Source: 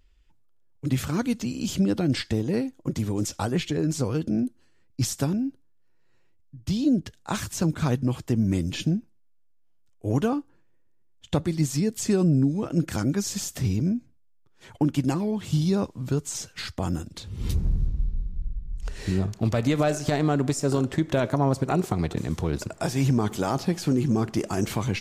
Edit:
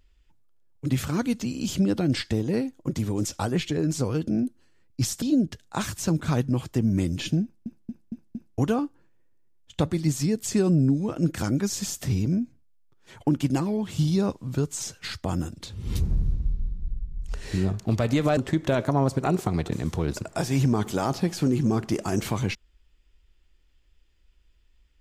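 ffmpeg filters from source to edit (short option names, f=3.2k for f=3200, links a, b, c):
-filter_complex "[0:a]asplit=8[a][b][c][d][e][f][g][h];[a]atrim=end=5.222[i];[b]atrim=start=6.758:end=9.202[j];[c]atrim=start=8.968:end=9.202[k];[d]atrim=start=8.968:end=9.202[l];[e]atrim=start=8.968:end=9.202[m];[f]atrim=start=8.968:end=9.202[n];[g]atrim=start=10.118:end=19.912[o];[h]atrim=start=20.818[p];[i][j]acrossfade=d=0.004:c1=hsin:c2=hsin[q];[q][k]acrossfade=d=0.004:c1=hsin:c2=hsin[r];[r][l]acrossfade=d=0.004:c1=hsin:c2=hsin[s];[s][m]acrossfade=d=0.004:c1=hsin:c2=hsin[t];[t][n]acrossfade=d=0.004:c1=hsin:c2=hsin[u];[u][o]acrossfade=d=0.004:c1=hsin:c2=hsin[v];[v][p]acrossfade=d=0.004:c1=hsin:c2=hsin"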